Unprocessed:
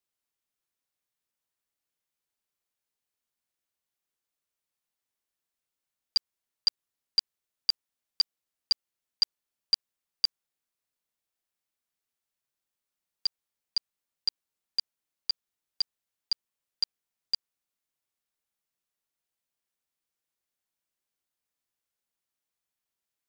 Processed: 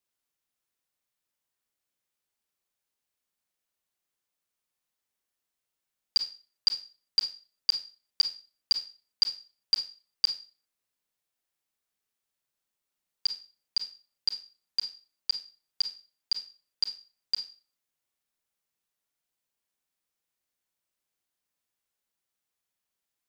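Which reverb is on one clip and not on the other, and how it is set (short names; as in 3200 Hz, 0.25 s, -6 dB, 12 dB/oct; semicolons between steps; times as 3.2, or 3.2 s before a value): Schroeder reverb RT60 0.35 s, combs from 30 ms, DRR 6.5 dB; gain +1 dB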